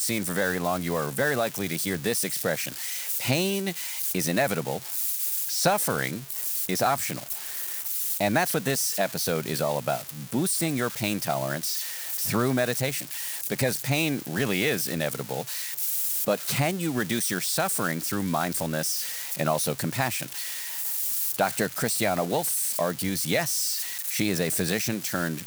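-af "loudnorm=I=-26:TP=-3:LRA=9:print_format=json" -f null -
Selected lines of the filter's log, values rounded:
"input_i" : "-26.2",
"input_tp" : "-9.8",
"input_lra" : "1.4",
"input_thresh" : "-36.2",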